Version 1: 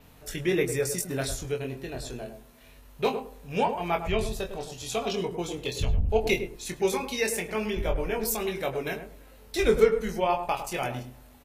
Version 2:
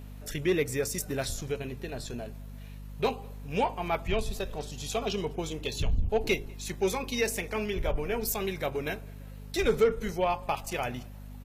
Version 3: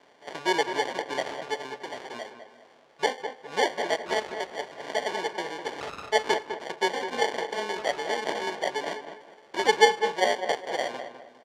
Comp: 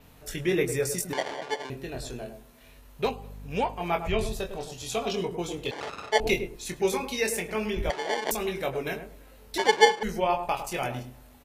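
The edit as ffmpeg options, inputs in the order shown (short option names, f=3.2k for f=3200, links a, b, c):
-filter_complex "[2:a]asplit=4[a][b][c][d];[0:a]asplit=6[e][f][g][h][i][j];[e]atrim=end=1.132[k];[a]atrim=start=1.128:end=1.702[l];[f]atrim=start=1.698:end=3.052[m];[1:a]atrim=start=3.048:end=3.802[n];[g]atrim=start=3.798:end=5.712[o];[b]atrim=start=5.708:end=6.202[p];[h]atrim=start=6.198:end=7.902[q];[c]atrim=start=7.898:end=8.312[r];[i]atrim=start=8.308:end=9.582[s];[d]atrim=start=9.578:end=10.032[t];[j]atrim=start=10.028[u];[k][l]acrossfade=d=0.004:c1=hsin:c2=hsin[v];[v][m]acrossfade=d=0.004:c1=hsin:c2=hsin[w];[w][n]acrossfade=d=0.004:c1=hsin:c2=hsin[x];[x][o]acrossfade=d=0.004:c1=hsin:c2=hsin[y];[y][p]acrossfade=d=0.004:c1=hsin:c2=hsin[z];[z][q]acrossfade=d=0.004:c1=hsin:c2=hsin[aa];[aa][r]acrossfade=d=0.004:c1=hsin:c2=hsin[ab];[ab][s]acrossfade=d=0.004:c1=hsin:c2=hsin[ac];[ac][t]acrossfade=d=0.004:c1=hsin:c2=hsin[ad];[ad][u]acrossfade=d=0.004:c1=hsin:c2=hsin"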